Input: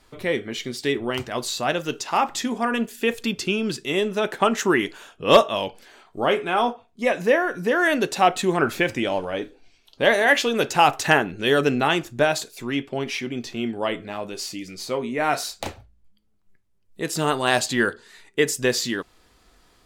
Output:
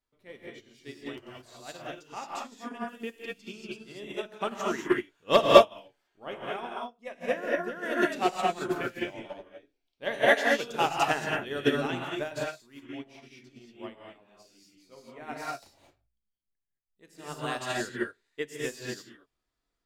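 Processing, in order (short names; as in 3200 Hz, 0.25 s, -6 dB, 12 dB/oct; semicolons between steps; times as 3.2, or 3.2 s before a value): bell 9900 Hz -3 dB 0.21 oct; non-linear reverb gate 0.25 s rising, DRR -3.5 dB; upward expander 2.5:1, over -26 dBFS; gain -2 dB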